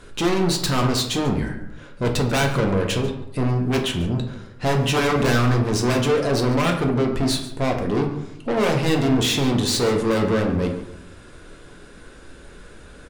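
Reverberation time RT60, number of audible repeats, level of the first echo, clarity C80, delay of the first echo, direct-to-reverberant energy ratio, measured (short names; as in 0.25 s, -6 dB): 0.80 s, 1, -15.5 dB, 9.5 dB, 0.141 s, 1.5 dB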